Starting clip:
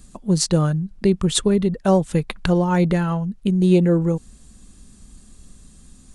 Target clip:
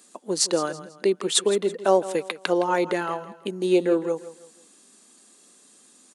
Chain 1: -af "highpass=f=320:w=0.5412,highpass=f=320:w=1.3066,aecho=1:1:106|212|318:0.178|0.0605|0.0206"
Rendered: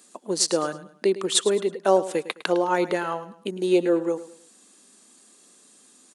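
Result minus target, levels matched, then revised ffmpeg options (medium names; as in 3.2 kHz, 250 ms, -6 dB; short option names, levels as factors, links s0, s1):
echo 58 ms early
-af "highpass=f=320:w=0.5412,highpass=f=320:w=1.3066,aecho=1:1:164|328|492:0.178|0.0605|0.0206"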